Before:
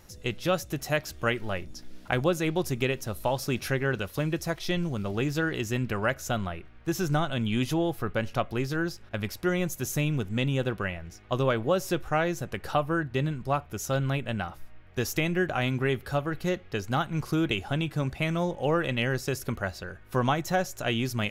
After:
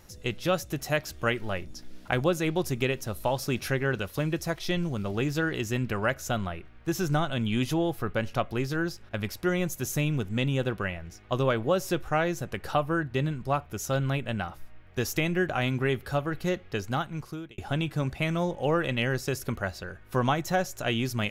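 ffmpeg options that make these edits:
ffmpeg -i in.wav -filter_complex "[0:a]asplit=2[link_01][link_02];[link_01]atrim=end=17.58,asetpts=PTS-STARTPTS,afade=type=out:start_time=16.81:duration=0.77[link_03];[link_02]atrim=start=17.58,asetpts=PTS-STARTPTS,afade=type=in:duration=0.004:curve=hsin[link_04];[link_03][link_04]concat=n=2:v=0:a=1" out.wav

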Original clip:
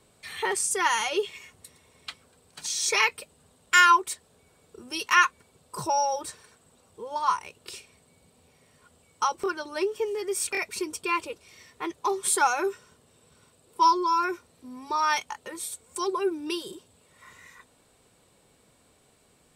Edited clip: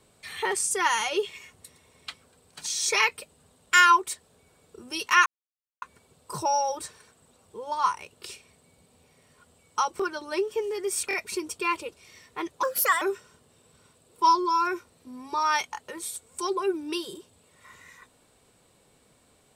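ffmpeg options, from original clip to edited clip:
ffmpeg -i in.wav -filter_complex "[0:a]asplit=4[link_01][link_02][link_03][link_04];[link_01]atrim=end=5.26,asetpts=PTS-STARTPTS,afade=type=out:start_time=5.256:duration=0.004:curve=hsin,apad=pad_dur=0.56[link_05];[link_02]atrim=start=5.26:end=12.074,asetpts=PTS-STARTPTS,afade=type=in:duration=0.004:curve=hsin[link_06];[link_03]atrim=start=12.07:end=12.59,asetpts=PTS-STARTPTS,asetrate=59535,aresample=44100[link_07];[link_04]atrim=start=12.586[link_08];[link_05][link_06]concat=n=2:v=0:a=1[link_09];[link_09][link_07]acrossfade=duration=0.004:curve1=hsin:curve2=hsin[link_10];[link_10][link_08]acrossfade=duration=0.004:curve1=hsin:curve2=hsin" out.wav

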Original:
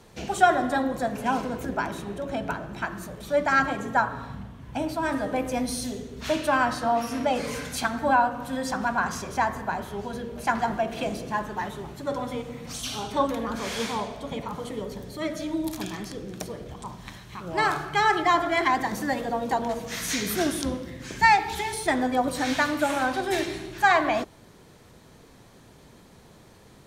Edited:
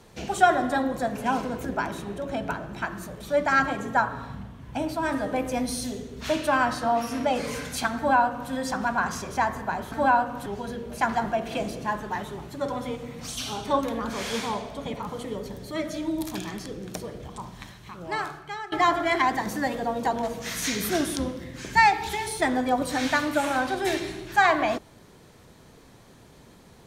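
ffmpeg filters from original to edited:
ffmpeg -i in.wav -filter_complex "[0:a]asplit=4[link_01][link_02][link_03][link_04];[link_01]atrim=end=9.922[link_05];[link_02]atrim=start=7.968:end=8.512[link_06];[link_03]atrim=start=9.918:end=18.18,asetpts=PTS-STARTPTS,afade=type=out:start_time=7.042:duration=1.22:silence=0.1[link_07];[link_04]atrim=start=18.18,asetpts=PTS-STARTPTS,afade=type=in:duration=0.004:curve=hsin:silence=0.1[link_08];[link_05][link_06]acrossfade=duration=0.004:curve1=hsin:curve2=hsin[link_09];[link_07][link_08]concat=n=2:v=0:a=1[link_10];[link_09][link_10]acrossfade=duration=0.004:curve1=hsin:curve2=hsin" out.wav

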